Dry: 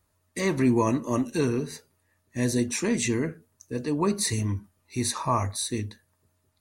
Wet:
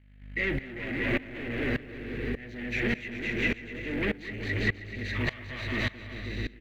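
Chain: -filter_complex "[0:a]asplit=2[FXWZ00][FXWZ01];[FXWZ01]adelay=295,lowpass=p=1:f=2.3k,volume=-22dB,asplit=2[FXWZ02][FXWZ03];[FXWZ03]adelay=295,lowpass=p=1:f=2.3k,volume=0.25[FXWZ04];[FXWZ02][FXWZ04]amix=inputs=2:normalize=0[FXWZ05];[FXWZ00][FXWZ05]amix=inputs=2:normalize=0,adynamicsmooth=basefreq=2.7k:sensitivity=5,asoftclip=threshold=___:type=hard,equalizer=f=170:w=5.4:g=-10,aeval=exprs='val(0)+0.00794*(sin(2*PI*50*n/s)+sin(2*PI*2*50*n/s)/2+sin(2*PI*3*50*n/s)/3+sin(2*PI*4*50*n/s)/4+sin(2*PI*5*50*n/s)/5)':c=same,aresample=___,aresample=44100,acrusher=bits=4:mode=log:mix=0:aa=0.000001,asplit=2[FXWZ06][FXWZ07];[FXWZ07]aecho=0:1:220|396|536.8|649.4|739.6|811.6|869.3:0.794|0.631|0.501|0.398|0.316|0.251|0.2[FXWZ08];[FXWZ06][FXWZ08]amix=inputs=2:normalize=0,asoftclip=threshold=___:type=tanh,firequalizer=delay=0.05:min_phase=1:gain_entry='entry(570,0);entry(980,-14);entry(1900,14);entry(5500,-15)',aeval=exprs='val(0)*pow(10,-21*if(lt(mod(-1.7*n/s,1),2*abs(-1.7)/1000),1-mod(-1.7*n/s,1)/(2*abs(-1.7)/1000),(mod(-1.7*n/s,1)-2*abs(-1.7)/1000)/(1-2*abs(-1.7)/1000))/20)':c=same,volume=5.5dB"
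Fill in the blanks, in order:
-28dB, 16000, -26.5dB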